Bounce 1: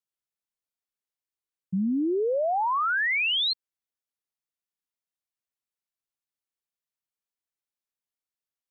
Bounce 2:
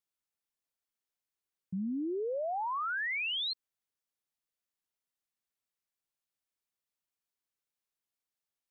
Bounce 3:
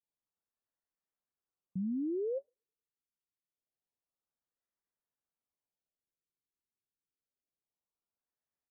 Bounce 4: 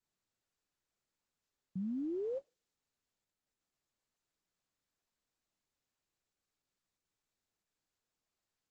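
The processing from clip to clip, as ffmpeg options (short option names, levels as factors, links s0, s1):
-af "alimiter=level_in=2.24:limit=0.0631:level=0:latency=1,volume=0.447"
-filter_complex "[0:a]acrossover=split=1500[s0][s1];[s0]adelay=30[s2];[s2][s1]amix=inputs=2:normalize=0,afftfilt=real='re*lt(b*sr/1024,440*pow(2100/440,0.5+0.5*sin(2*PI*0.26*pts/sr)))':imag='im*lt(b*sr/1024,440*pow(2100/440,0.5+0.5*sin(2*PI*0.26*pts/sr)))':win_size=1024:overlap=0.75"
-af "volume=0.708" -ar 48000 -c:a libopus -b:a 10k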